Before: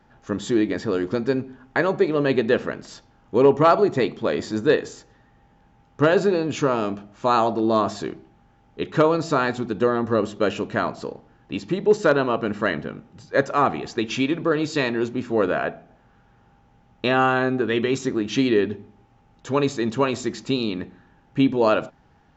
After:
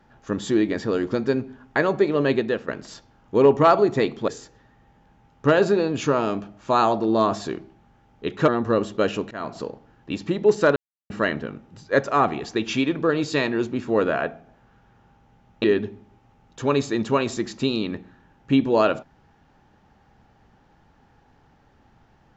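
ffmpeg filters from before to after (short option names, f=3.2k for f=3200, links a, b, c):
-filter_complex "[0:a]asplit=8[a][b][c][d][e][f][g][h];[a]atrim=end=2.68,asetpts=PTS-STARTPTS,afade=t=out:st=2.29:d=0.39:silence=0.281838[i];[b]atrim=start=2.68:end=4.282,asetpts=PTS-STARTPTS,afade=t=in:d=0.004:c=hsin:silence=0.281838[j];[c]atrim=start=4.828:end=9.032[k];[d]atrim=start=9.898:end=10.73,asetpts=PTS-STARTPTS,afade=t=out:st=0.828:d=0.004:c=hsin:silence=0.0749894[l];[e]atrim=start=10.73:end=12.18,asetpts=PTS-STARTPTS,afade=t=in:d=0.26:silence=0.0749894,afade=t=out:st=1.446:d=0.004:c=hsin[m];[f]atrim=start=12.18:end=12.52,asetpts=PTS-STARTPTS,volume=0[n];[g]atrim=start=12.52:end=17.062,asetpts=PTS-STARTPTS,afade=t=in:d=0.004:c=hsin[o];[h]atrim=start=18.508[p];[i][j]concat=n=2:v=0:a=1[q];[q][k]acrossfade=d=0.004:c1=hsin:c2=hsin[r];[l][m][n][o]concat=n=4:v=0:a=1[s];[r][s]acrossfade=d=0.004:c1=hsin:c2=hsin[t];[t][p]acrossfade=d=0.004:c1=hsin:c2=hsin"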